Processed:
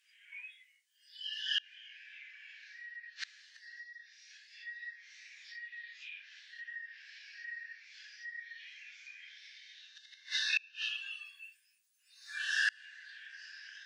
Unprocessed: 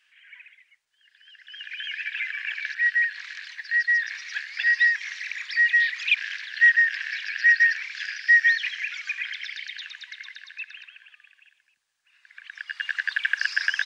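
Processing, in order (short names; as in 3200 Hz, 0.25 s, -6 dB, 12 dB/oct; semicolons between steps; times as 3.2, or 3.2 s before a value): phase scrambler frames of 0.2 s; in parallel at +0.5 dB: compressor 10:1, threshold -29 dBFS, peak gain reduction 15.5 dB; on the sum: differentiator; treble ducked by the level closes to 2900 Hz, closed at -26.5 dBFS; spectral noise reduction 19 dB; flipped gate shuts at -33 dBFS, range -30 dB; 3.83–4.67 Bessel high-pass 2200 Hz; gain +13.5 dB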